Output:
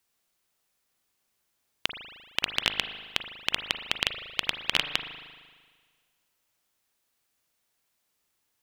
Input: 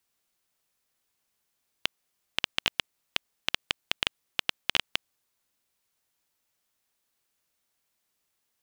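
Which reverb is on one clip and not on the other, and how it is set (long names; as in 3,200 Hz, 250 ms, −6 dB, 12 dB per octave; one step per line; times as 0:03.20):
spring reverb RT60 1.6 s, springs 38 ms, chirp 25 ms, DRR 7 dB
level +1.5 dB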